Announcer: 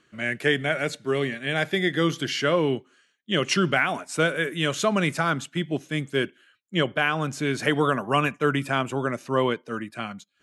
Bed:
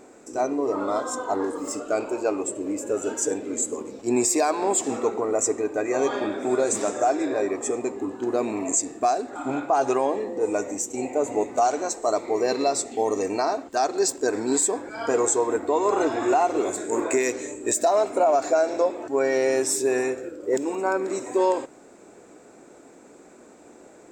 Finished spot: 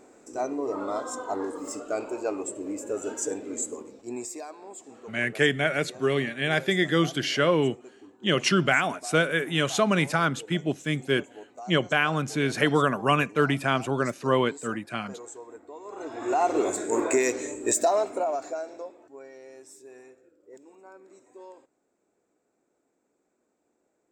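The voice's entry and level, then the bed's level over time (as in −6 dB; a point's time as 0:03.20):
4.95 s, 0.0 dB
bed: 0:03.66 −5 dB
0:04.63 −21 dB
0:15.84 −21 dB
0:16.48 −0.5 dB
0:17.78 −0.5 dB
0:19.37 −25.5 dB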